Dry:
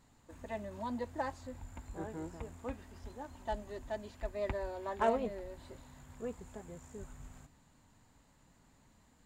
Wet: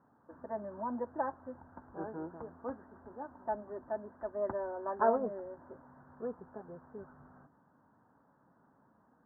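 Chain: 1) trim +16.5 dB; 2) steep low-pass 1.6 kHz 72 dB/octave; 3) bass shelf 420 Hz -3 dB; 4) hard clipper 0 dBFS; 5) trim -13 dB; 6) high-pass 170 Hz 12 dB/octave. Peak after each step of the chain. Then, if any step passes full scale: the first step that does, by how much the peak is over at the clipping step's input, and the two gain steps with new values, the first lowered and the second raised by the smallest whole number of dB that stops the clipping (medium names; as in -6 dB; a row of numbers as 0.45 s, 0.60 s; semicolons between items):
-0.5 dBFS, -1.0 dBFS, -2.0 dBFS, -2.0 dBFS, -15.0 dBFS, -16.0 dBFS; nothing clips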